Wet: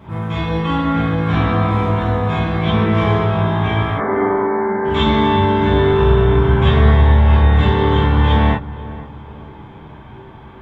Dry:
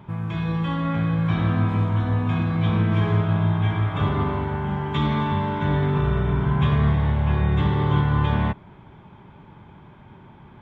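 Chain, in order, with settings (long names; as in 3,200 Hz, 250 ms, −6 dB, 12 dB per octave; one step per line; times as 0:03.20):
0:03.94–0:04.85: linear-phase brick-wall band-pass 190–2,300 Hz
feedback echo with a low-pass in the loop 488 ms, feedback 43%, low-pass 1,300 Hz, level −15.5 dB
reverb whose tail is shaped and stops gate 80 ms flat, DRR −7.5 dB
level +1.5 dB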